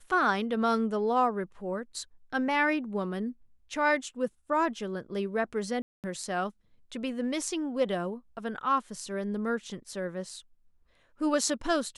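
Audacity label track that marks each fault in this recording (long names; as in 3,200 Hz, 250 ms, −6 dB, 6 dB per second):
5.820000	6.040000	drop-out 218 ms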